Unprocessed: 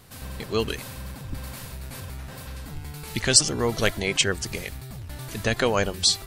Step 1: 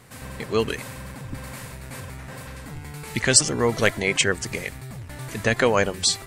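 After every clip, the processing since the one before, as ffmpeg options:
ffmpeg -i in.wav -af "equalizer=frequency=125:width_type=o:width=1:gain=7,equalizer=frequency=250:width_type=o:width=1:gain=6,equalizer=frequency=500:width_type=o:width=1:gain=7,equalizer=frequency=1000:width_type=o:width=1:gain=6,equalizer=frequency=2000:width_type=o:width=1:gain=10,equalizer=frequency=8000:width_type=o:width=1:gain=8,volume=-6dB" out.wav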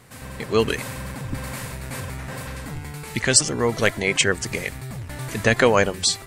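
ffmpeg -i in.wav -af "dynaudnorm=framelen=120:gausssize=9:maxgain=5dB" out.wav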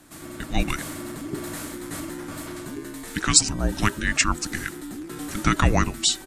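ffmpeg -i in.wav -af "aresample=32000,aresample=44100,afreqshift=-420,highshelf=frequency=6500:gain=5,volume=-2.5dB" out.wav

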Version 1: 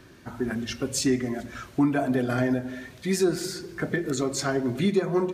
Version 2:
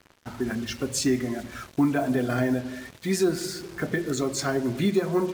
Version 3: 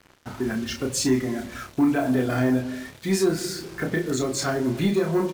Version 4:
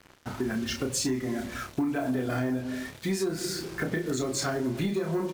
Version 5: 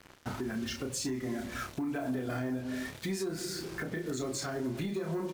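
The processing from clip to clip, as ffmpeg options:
ffmpeg -i in.wav -af "acrusher=bits=6:mix=0:aa=0.5" out.wav
ffmpeg -i in.wav -filter_complex "[0:a]asplit=2[link_01][link_02];[link_02]asoftclip=type=hard:threshold=-22dB,volume=-4.5dB[link_03];[link_01][link_03]amix=inputs=2:normalize=0,asplit=2[link_04][link_05];[link_05]adelay=31,volume=-5dB[link_06];[link_04][link_06]amix=inputs=2:normalize=0,volume=-3dB" out.wav
ffmpeg -i in.wav -af "acompressor=threshold=-26dB:ratio=5" out.wav
ffmpeg -i in.wav -af "alimiter=level_in=2.5dB:limit=-24dB:level=0:latency=1:release=390,volume=-2.5dB" out.wav

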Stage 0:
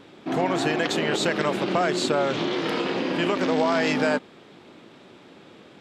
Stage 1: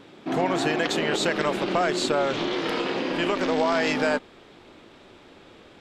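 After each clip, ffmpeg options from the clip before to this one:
ffmpeg -i in.wav -af "asubboost=boost=10.5:cutoff=51" out.wav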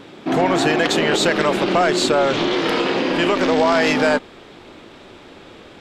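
ffmpeg -i in.wav -af "asoftclip=type=tanh:threshold=-14.5dB,volume=8dB" out.wav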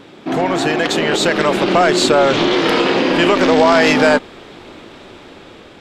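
ffmpeg -i in.wav -af "dynaudnorm=framelen=580:gausssize=5:maxgain=7dB" out.wav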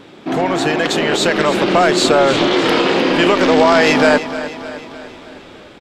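ffmpeg -i in.wav -af "aecho=1:1:305|610|915|1220|1525:0.224|0.119|0.0629|0.0333|0.0177" out.wav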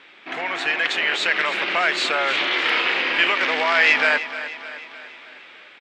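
ffmpeg -i in.wav -af "bandpass=frequency=2200:width_type=q:width=2:csg=0,volume=3dB" out.wav

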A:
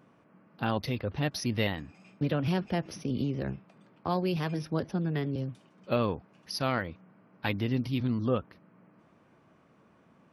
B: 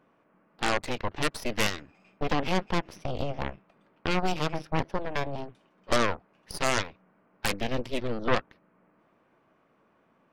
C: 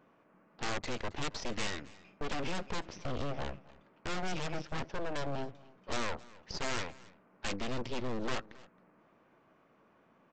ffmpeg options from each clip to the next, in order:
ffmpeg -i in.wav -af "bass=frequency=250:gain=-9,treble=frequency=4000:gain=-8,aeval=exprs='0.188*(cos(1*acos(clip(val(0)/0.188,-1,1)))-cos(1*PI/2))+0.0299*(cos(3*acos(clip(val(0)/0.188,-1,1)))-cos(3*PI/2))+0.0376*(cos(4*acos(clip(val(0)/0.188,-1,1)))-cos(4*PI/2))+0.0841*(cos(6*acos(clip(val(0)/0.188,-1,1)))-cos(6*PI/2))+0.0944*(cos(8*acos(clip(val(0)/0.188,-1,1)))-cos(8*PI/2))':channel_layout=same,volume=4dB" out.wav
ffmpeg -i in.wav -af "aresample=16000,asoftclip=type=hard:threshold=-29.5dB,aresample=44100,aecho=1:1:270:0.0841" out.wav

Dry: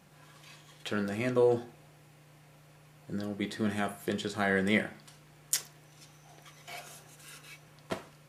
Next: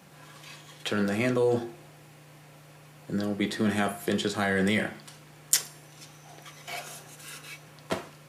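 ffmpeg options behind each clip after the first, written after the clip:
ffmpeg -i in.wav -filter_complex "[0:a]bandreject=frequency=349.2:width_type=h:width=4,bandreject=frequency=698.4:width_type=h:width=4,bandreject=frequency=1047.6:width_type=h:width=4,bandreject=frequency=1396.8:width_type=h:width=4,bandreject=frequency=1746:width_type=h:width=4,bandreject=frequency=2095.2:width_type=h:width=4,bandreject=frequency=2444.4:width_type=h:width=4,bandreject=frequency=2793.6:width_type=h:width=4,bandreject=frequency=3142.8:width_type=h:width=4,bandreject=frequency=3492:width_type=h:width=4,bandreject=frequency=3841.2:width_type=h:width=4,bandreject=frequency=4190.4:width_type=h:width=4,bandreject=frequency=4539.6:width_type=h:width=4,bandreject=frequency=4888.8:width_type=h:width=4,bandreject=frequency=5238:width_type=h:width=4,bandreject=frequency=5587.2:width_type=h:width=4,bandreject=frequency=5936.4:width_type=h:width=4,bandreject=frequency=6285.6:width_type=h:width=4,bandreject=frequency=6634.8:width_type=h:width=4,bandreject=frequency=6984:width_type=h:width=4,bandreject=frequency=7333.2:width_type=h:width=4,bandreject=frequency=7682.4:width_type=h:width=4,bandreject=frequency=8031.6:width_type=h:width=4,bandreject=frequency=8380.8:width_type=h:width=4,bandreject=frequency=8730:width_type=h:width=4,bandreject=frequency=9079.2:width_type=h:width=4,bandreject=frequency=9428.4:width_type=h:width=4,bandreject=frequency=9777.6:width_type=h:width=4,bandreject=frequency=10126.8:width_type=h:width=4,bandreject=frequency=10476:width_type=h:width=4,bandreject=frequency=10825.2:width_type=h:width=4,bandreject=frequency=11174.4:width_type=h:width=4,bandreject=frequency=11523.6:width_type=h:width=4,bandreject=frequency=11872.8:width_type=h:width=4,bandreject=frequency=12222:width_type=h:width=4,bandreject=frequency=12571.2:width_type=h:width=4,bandreject=frequency=12920.4:width_type=h:width=4,bandreject=frequency=13269.6:width_type=h:width=4,acrossover=split=140|3400[link_01][link_02][link_03];[link_01]highpass=frequency=68:width=0.5412,highpass=frequency=68:width=1.3066[link_04];[link_02]alimiter=limit=-24dB:level=0:latency=1:release=19[link_05];[link_04][link_05][link_03]amix=inputs=3:normalize=0,volume=7dB" out.wav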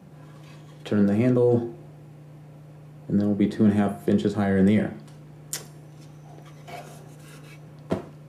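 ffmpeg -i in.wav -af "tiltshelf=frequency=770:gain=9.5" out.wav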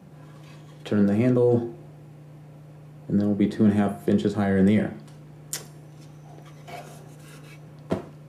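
ffmpeg -i in.wav -af anull out.wav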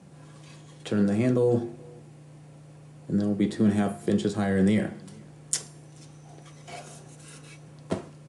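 ffmpeg -i in.wav -filter_complex "[0:a]aresample=22050,aresample=44100,crystalizer=i=2:c=0,asplit=2[link_01][link_02];[link_02]adelay=431.5,volume=-27dB,highshelf=frequency=4000:gain=-9.71[link_03];[link_01][link_03]amix=inputs=2:normalize=0,volume=-3dB" out.wav

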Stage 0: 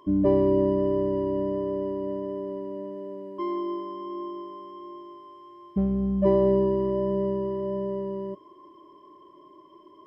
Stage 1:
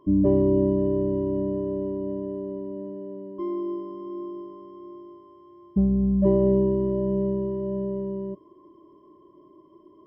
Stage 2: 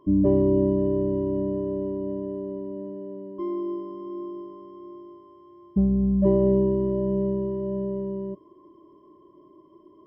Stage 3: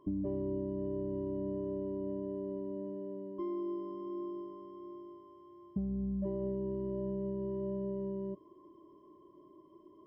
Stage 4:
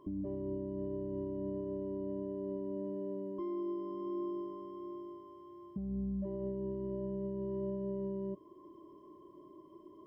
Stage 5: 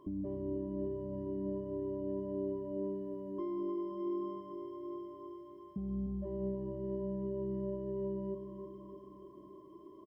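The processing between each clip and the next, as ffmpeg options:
ffmpeg -i in.wav -af "tiltshelf=frequency=650:gain=9,volume=-3.5dB" out.wav
ffmpeg -i in.wav -af anull out.wav
ffmpeg -i in.wav -af "acompressor=threshold=-28dB:ratio=6,volume=-5.5dB" out.wav
ffmpeg -i in.wav -af "alimiter=level_in=10dB:limit=-24dB:level=0:latency=1:release=435,volume=-10dB,volume=3dB" out.wav
ffmpeg -i in.wav -af "aecho=1:1:305|610|915|1220|1525|1830|2135:0.376|0.214|0.122|0.0696|0.0397|0.0226|0.0129" out.wav

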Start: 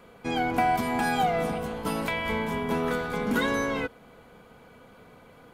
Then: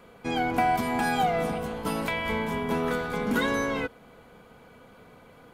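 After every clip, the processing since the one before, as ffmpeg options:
ffmpeg -i in.wav -af anull out.wav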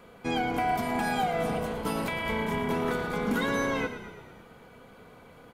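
ffmpeg -i in.wav -filter_complex "[0:a]alimiter=limit=-19dB:level=0:latency=1:release=305,asplit=8[link_01][link_02][link_03][link_04][link_05][link_06][link_07][link_08];[link_02]adelay=112,afreqshift=-32,volume=-11dB[link_09];[link_03]adelay=224,afreqshift=-64,volume=-15.6dB[link_10];[link_04]adelay=336,afreqshift=-96,volume=-20.2dB[link_11];[link_05]adelay=448,afreqshift=-128,volume=-24.7dB[link_12];[link_06]adelay=560,afreqshift=-160,volume=-29.3dB[link_13];[link_07]adelay=672,afreqshift=-192,volume=-33.9dB[link_14];[link_08]adelay=784,afreqshift=-224,volume=-38.5dB[link_15];[link_01][link_09][link_10][link_11][link_12][link_13][link_14][link_15]amix=inputs=8:normalize=0" out.wav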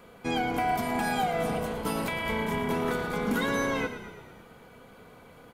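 ffmpeg -i in.wav -af "highshelf=frequency=6900:gain=4" out.wav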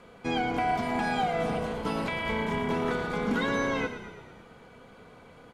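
ffmpeg -i in.wav -filter_complex "[0:a]lowpass=7700,acrossover=split=5700[link_01][link_02];[link_02]acompressor=threshold=-55dB:ratio=4:attack=1:release=60[link_03];[link_01][link_03]amix=inputs=2:normalize=0" out.wav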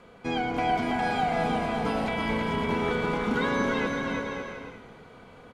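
ffmpeg -i in.wav -af "highshelf=frequency=8100:gain=-5,aecho=1:1:330|561|722.7|835.9|915.1:0.631|0.398|0.251|0.158|0.1" out.wav

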